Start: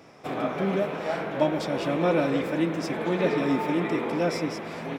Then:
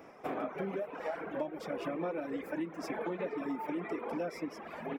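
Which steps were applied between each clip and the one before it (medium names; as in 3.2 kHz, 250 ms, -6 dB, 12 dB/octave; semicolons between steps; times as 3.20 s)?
reverb removal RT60 2 s; ten-band graphic EQ 125 Hz -11 dB, 4 kHz -11 dB, 8 kHz -7 dB; compression 10:1, threshold -33 dBFS, peak gain reduction 15 dB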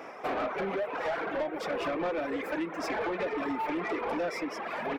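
overdrive pedal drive 19 dB, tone 4.1 kHz, clips at -23 dBFS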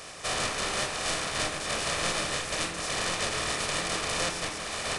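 spectral contrast reduction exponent 0.18; reverberation RT60 0.55 s, pre-delay 13 ms, DRR 3.5 dB; resampled via 22.05 kHz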